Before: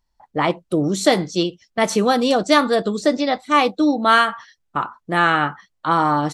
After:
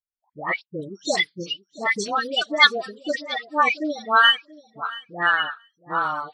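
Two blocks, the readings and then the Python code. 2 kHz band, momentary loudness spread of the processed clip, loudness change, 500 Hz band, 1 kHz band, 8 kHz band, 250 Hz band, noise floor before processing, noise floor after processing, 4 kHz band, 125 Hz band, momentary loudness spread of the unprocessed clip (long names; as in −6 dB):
+1.5 dB, 16 LU, −3.0 dB, −10.0 dB, −5.0 dB, −6.0 dB, −13.5 dB, −71 dBFS, −83 dBFS, +3.5 dB, below −15 dB, 11 LU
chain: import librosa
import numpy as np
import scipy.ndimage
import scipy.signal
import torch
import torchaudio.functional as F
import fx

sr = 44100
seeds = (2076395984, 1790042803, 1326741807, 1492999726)

p1 = fx.spec_quant(x, sr, step_db=30)
p2 = fx.dereverb_blind(p1, sr, rt60_s=1.9)
p3 = scipy.signal.sosfilt(scipy.signal.butter(2, 6000.0, 'lowpass', fs=sr, output='sos'), p2)
p4 = fx.tilt_shelf(p3, sr, db=-9.0, hz=1300.0)
p5 = fx.dispersion(p4, sr, late='highs', ms=112.0, hz=1100.0)
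p6 = p5 + fx.echo_feedback(p5, sr, ms=679, feedback_pct=21, wet_db=-13.5, dry=0)
y = fx.spectral_expand(p6, sr, expansion=1.5)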